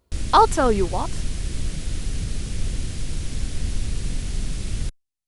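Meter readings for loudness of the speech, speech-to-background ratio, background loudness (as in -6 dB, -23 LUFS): -19.5 LUFS, 11.0 dB, -30.5 LUFS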